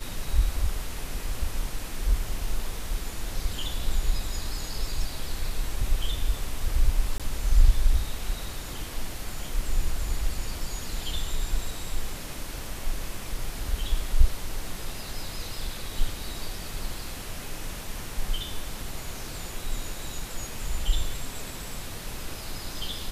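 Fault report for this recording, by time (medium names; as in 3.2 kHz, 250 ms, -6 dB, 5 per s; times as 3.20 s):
7.18–7.20 s: dropout 17 ms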